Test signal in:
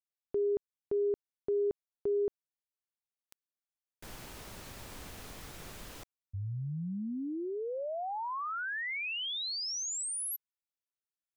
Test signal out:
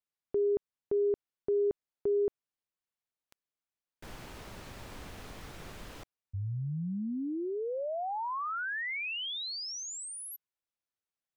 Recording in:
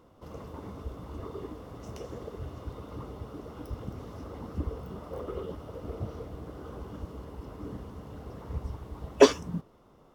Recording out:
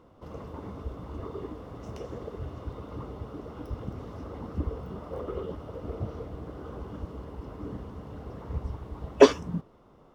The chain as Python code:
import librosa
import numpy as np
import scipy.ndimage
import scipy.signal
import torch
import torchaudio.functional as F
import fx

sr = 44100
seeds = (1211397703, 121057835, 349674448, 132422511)

y = fx.high_shelf(x, sr, hz=5500.0, db=-10.0)
y = y * librosa.db_to_amplitude(2.0)